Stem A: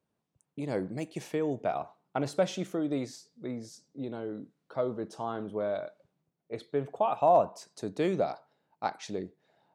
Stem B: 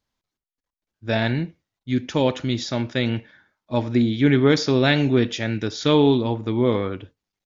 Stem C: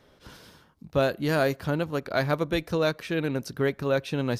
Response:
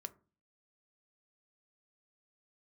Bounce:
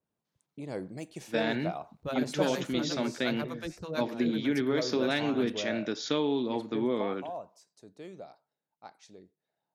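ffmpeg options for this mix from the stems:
-filter_complex "[0:a]adynamicequalizer=threshold=0.00355:dfrequency=3400:dqfactor=0.7:tfrequency=3400:tqfactor=0.7:attack=5:release=100:ratio=0.375:range=3:mode=boostabove:tftype=highshelf,volume=0.562,afade=t=out:st=6.69:d=0.5:silence=0.251189[s0];[1:a]highpass=f=180:w=0.5412,highpass=f=180:w=1.3066,acompressor=threshold=0.112:ratio=6,adelay=250,volume=0.531[s1];[2:a]flanger=delay=4.4:depth=9.9:regen=-74:speed=0.59:shape=triangular,acrossover=split=570[s2][s3];[s2]aeval=exprs='val(0)*(1-1/2+1/2*cos(2*PI*8.5*n/s))':c=same[s4];[s3]aeval=exprs='val(0)*(1-1/2-1/2*cos(2*PI*8.5*n/s))':c=same[s5];[s4][s5]amix=inputs=2:normalize=0,adelay=1100,volume=0.75[s6];[s0][s1][s6]amix=inputs=3:normalize=0"

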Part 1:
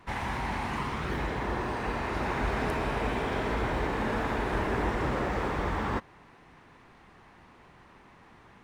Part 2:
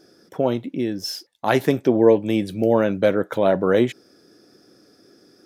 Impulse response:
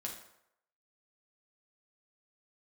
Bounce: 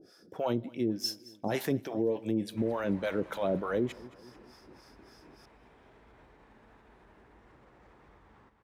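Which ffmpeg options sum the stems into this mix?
-filter_complex "[0:a]alimiter=level_in=1.68:limit=0.0631:level=0:latency=1:release=281,volume=0.596,adelay=2500,volume=0.224,asplit=2[s0][s1];[s1]volume=0.119[s2];[1:a]alimiter=limit=0.224:level=0:latency=1:release=13,acrossover=split=610[s3][s4];[s3]aeval=exprs='val(0)*(1-1/2+1/2*cos(2*PI*3.4*n/s))':c=same[s5];[s4]aeval=exprs='val(0)*(1-1/2-1/2*cos(2*PI*3.4*n/s))':c=same[s6];[s5][s6]amix=inputs=2:normalize=0,volume=0.891,asplit=4[s7][s8][s9][s10];[s8]volume=0.15[s11];[s9]volume=0.0841[s12];[s10]apad=whole_len=491215[s13];[s0][s13]sidechaingate=range=0.355:threshold=0.00398:ratio=16:detection=peak[s14];[2:a]atrim=start_sample=2205[s15];[s11][s15]afir=irnorm=-1:irlink=0[s16];[s2][s12]amix=inputs=2:normalize=0,aecho=0:1:220|440|660|880|1100|1320:1|0.44|0.194|0.0852|0.0375|0.0165[s17];[s14][s7][s16][s17]amix=inputs=4:normalize=0,alimiter=limit=0.1:level=0:latency=1:release=461"

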